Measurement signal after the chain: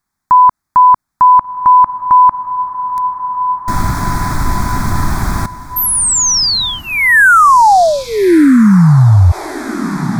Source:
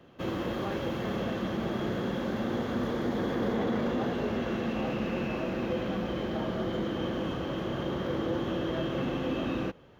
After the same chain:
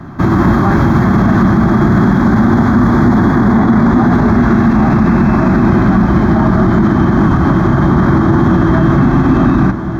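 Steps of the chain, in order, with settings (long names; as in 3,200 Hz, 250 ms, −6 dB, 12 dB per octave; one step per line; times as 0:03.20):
low-pass filter 3,300 Hz 6 dB per octave
low-shelf EQ 490 Hz +5 dB
phaser with its sweep stopped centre 1,200 Hz, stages 4
feedback delay with all-pass diffusion 1,402 ms, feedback 49%, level −15 dB
boost into a limiter +28 dB
level −1 dB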